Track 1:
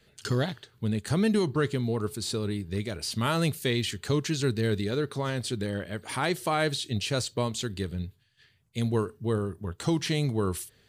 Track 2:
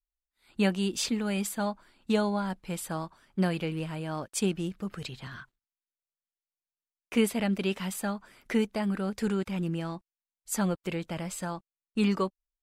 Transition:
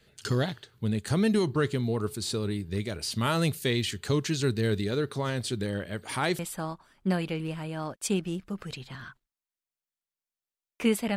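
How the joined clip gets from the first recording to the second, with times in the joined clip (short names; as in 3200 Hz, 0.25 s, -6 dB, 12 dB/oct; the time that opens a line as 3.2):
track 1
6.39 switch to track 2 from 2.71 s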